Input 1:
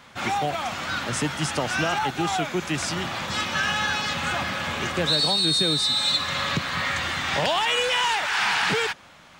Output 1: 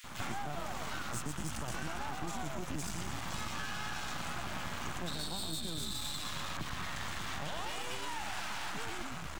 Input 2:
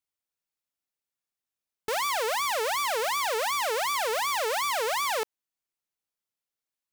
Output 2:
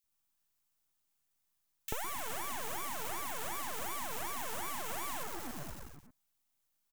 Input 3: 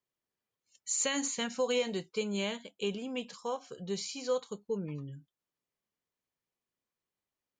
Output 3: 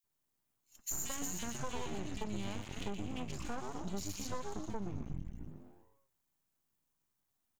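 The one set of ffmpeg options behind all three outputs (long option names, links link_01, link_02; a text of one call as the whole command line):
ffmpeg -i in.wav -filter_complex "[0:a]acrossover=split=1700[link_01][link_02];[link_02]aexciter=amount=3.6:drive=3.5:freq=6300[link_03];[link_01][link_03]amix=inputs=2:normalize=0,highshelf=frequency=2200:gain=-10.5,asplit=2[link_04][link_05];[link_05]asplit=7[link_06][link_07][link_08][link_09][link_10][link_11][link_12];[link_06]adelay=119,afreqshift=-98,volume=-5dB[link_13];[link_07]adelay=238,afreqshift=-196,volume=-10.2dB[link_14];[link_08]adelay=357,afreqshift=-294,volume=-15.4dB[link_15];[link_09]adelay=476,afreqshift=-392,volume=-20.6dB[link_16];[link_10]adelay=595,afreqshift=-490,volume=-25.8dB[link_17];[link_11]adelay=714,afreqshift=-588,volume=-31dB[link_18];[link_12]adelay=833,afreqshift=-686,volume=-36.2dB[link_19];[link_13][link_14][link_15][link_16][link_17][link_18][link_19]amix=inputs=7:normalize=0[link_20];[link_04][link_20]amix=inputs=2:normalize=0,alimiter=limit=-18dB:level=0:latency=1,aeval=exprs='max(val(0),0)':channel_layout=same,equalizer=frequency=480:width_type=o:width=0.77:gain=-9,acompressor=threshold=-46dB:ratio=6,acrossover=split=2000[link_21][link_22];[link_21]adelay=40[link_23];[link_23][link_22]amix=inputs=2:normalize=0,volume=11dB" out.wav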